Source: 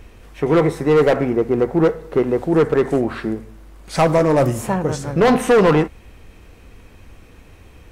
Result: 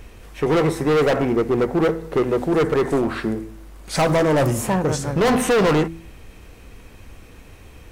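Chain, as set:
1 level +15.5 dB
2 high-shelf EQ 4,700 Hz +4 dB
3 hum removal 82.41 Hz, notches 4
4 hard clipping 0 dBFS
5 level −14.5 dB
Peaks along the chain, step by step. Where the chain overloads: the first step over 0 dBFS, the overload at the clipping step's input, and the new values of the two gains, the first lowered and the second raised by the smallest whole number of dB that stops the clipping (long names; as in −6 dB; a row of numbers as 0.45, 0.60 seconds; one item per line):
+6.5, +8.0, +9.5, 0.0, −14.5 dBFS
step 1, 9.5 dB
step 1 +5.5 dB, step 5 −4.5 dB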